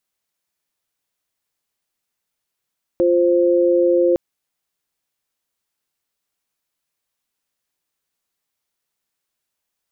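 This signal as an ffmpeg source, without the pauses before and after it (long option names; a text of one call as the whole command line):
ffmpeg -f lavfi -i "aevalsrc='0.178*(sin(2*PI*349.23*t)+sin(2*PI*523.25*t))':duration=1.16:sample_rate=44100" out.wav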